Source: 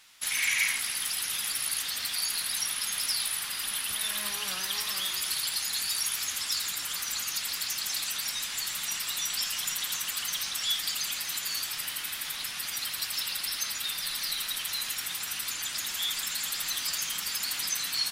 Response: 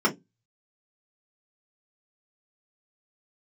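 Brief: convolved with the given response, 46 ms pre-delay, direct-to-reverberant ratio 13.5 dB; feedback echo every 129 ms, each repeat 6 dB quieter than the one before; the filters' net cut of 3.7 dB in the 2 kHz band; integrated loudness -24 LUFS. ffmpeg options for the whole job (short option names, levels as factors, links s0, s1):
-filter_complex "[0:a]equalizer=f=2000:t=o:g=-4.5,aecho=1:1:129|258|387|516|645|774:0.501|0.251|0.125|0.0626|0.0313|0.0157,asplit=2[s0][s1];[1:a]atrim=start_sample=2205,adelay=46[s2];[s1][s2]afir=irnorm=-1:irlink=0,volume=0.0398[s3];[s0][s3]amix=inputs=2:normalize=0,volume=1.68"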